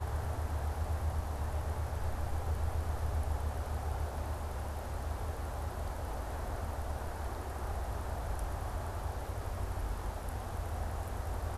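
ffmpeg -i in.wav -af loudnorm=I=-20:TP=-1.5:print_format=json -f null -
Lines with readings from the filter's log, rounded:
"input_i" : "-38.8",
"input_tp" : "-23.4",
"input_lra" : "2.6",
"input_thresh" : "-48.8",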